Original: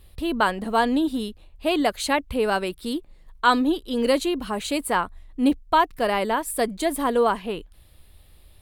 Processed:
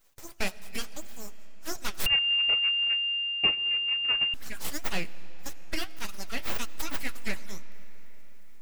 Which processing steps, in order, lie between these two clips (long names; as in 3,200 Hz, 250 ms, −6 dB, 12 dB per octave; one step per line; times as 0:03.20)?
harmonic-percussive split with one part muted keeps percussive
Butterworth high-pass 700 Hz 48 dB per octave
spectral tilt +2.5 dB per octave
full-wave rectification
flanger 1.8 Hz, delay 3.3 ms, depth 8.7 ms, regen −57%
soft clipping −16 dBFS, distortion −21 dB
comb and all-pass reverb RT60 4.9 s, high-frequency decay 0.75×, pre-delay 40 ms, DRR 16 dB
0:02.06–0:04.34: voice inversion scrambler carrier 2,800 Hz